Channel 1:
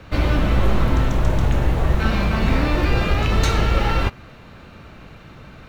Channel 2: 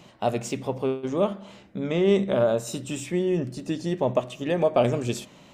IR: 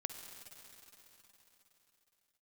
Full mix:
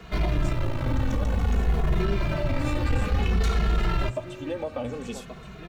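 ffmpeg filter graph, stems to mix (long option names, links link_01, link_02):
-filter_complex "[0:a]acontrast=79,volume=-5.5dB[link_01];[1:a]volume=-3.5dB,asplit=2[link_02][link_03];[link_03]volume=-11dB,aecho=0:1:1128:1[link_04];[link_01][link_02][link_04]amix=inputs=3:normalize=0,acrossover=split=170[link_05][link_06];[link_06]acompressor=threshold=-23dB:ratio=6[link_07];[link_05][link_07]amix=inputs=2:normalize=0,asoftclip=type=tanh:threshold=-14.5dB,asplit=2[link_08][link_09];[link_09]adelay=2.4,afreqshift=-0.55[link_10];[link_08][link_10]amix=inputs=2:normalize=1"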